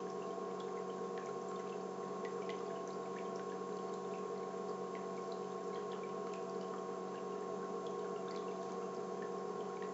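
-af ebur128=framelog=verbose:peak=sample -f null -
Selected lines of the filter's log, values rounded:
Integrated loudness:
  I:         -43.6 LUFS
  Threshold: -53.6 LUFS
Loudness range:
  LRA:         0.2 LU
  Threshold: -63.6 LUFS
  LRA low:   -43.7 LUFS
  LRA high:  -43.5 LUFS
Sample peak:
  Peak:      -29.1 dBFS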